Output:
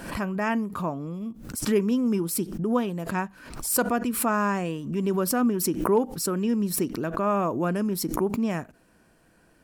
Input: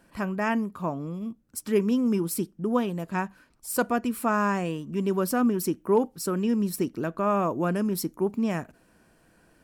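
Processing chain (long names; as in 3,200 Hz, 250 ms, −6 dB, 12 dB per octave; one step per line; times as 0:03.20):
background raised ahead of every attack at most 72 dB per second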